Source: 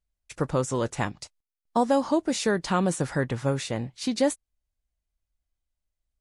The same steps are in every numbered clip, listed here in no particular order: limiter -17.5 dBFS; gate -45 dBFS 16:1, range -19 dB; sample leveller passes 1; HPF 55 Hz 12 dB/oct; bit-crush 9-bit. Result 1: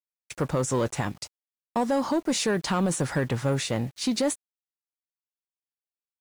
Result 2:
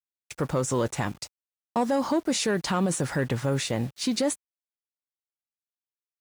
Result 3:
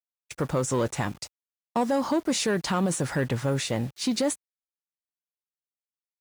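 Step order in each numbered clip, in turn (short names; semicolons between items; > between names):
HPF > limiter > sample leveller > gate > bit-crush; gate > bit-crush > sample leveller > limiter > HPF; limiter > bit-crush > gate > sample leveller > HPF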